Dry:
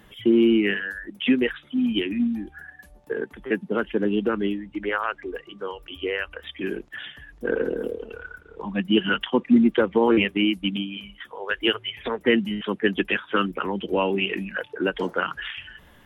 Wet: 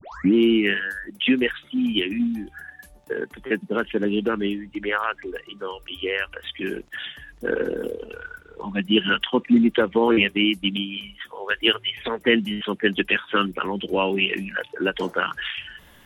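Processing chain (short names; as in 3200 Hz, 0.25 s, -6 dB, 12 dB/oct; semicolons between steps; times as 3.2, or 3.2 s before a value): tape start at the beginning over 0.34 s; high shelf 2500 Hz +8 dB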